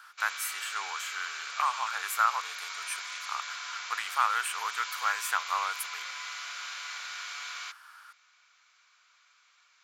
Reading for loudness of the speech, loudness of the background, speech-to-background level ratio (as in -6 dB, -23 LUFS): -32.5 LUFS, -37.5 LUFS, 5.0 dB